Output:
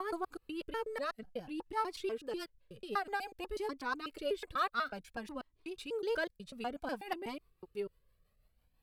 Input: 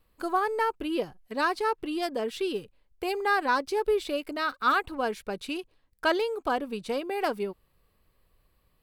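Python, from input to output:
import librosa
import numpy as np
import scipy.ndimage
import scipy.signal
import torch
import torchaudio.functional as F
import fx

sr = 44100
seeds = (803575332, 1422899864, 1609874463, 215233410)

y = fx.block_reorder(x, sr, ms=123.0, group=4)
y = fx.rotary(y, sr, hz=6.0)
y = fx.comb_cascade(y, sr, direction='rising', hz=0.55)
y = F.gain(torch.from_numpy(y), -2.0).numpy()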